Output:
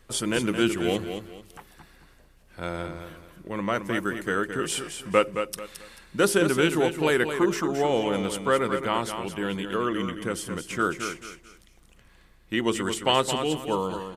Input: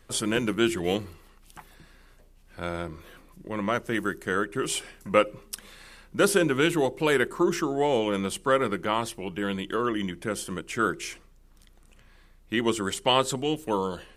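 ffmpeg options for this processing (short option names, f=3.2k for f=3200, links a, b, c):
-af "aecho=1:1:219|438|657:0.398|0.115|0.0335"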